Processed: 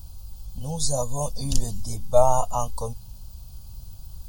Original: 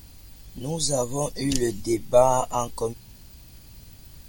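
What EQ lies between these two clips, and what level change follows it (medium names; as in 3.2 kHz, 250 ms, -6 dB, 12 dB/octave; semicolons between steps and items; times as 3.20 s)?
bass shelf 91 Hz +11.5 dB; static phaser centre 830 Hz, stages 4; 0.0 dB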